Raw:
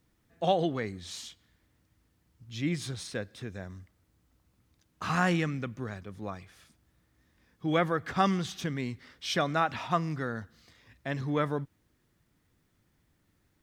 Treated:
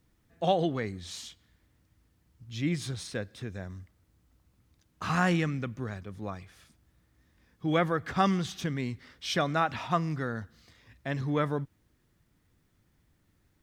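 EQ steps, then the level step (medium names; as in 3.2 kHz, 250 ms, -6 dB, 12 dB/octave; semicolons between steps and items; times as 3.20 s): bass shelf 110 Hz +5 dB; 0.0 dB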